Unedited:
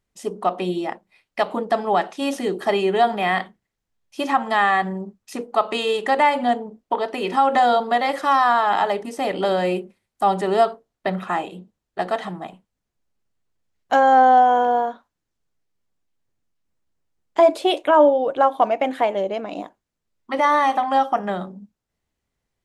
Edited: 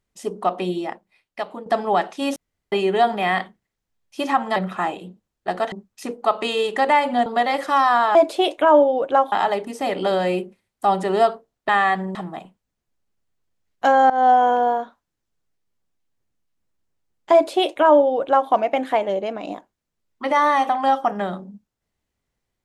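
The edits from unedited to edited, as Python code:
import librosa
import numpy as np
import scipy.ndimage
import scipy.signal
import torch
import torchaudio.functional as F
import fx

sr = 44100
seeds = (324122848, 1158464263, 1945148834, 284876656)

y = fx.edit(x, sr, fx.fade_out_to(start_s=0.64, length_s=1.02, floor_db=-11.0),
    fx.room_tone_fill(start_s=2.36, length_s=0.36),
    fx.swap(start_s=4.56, length_s=0.46, other_s=11.07, other_length_s=1.16),
    fx.cut(start_s=6.56, length_s=1.25),
    fx.fade_in_from(start_s=14.18, length_s=0.27, curve='qsin', floor_db=-20.5),
    fx.duplicate(start_s=17.41, length_s=1.17, to_s=8.7), tone=tone)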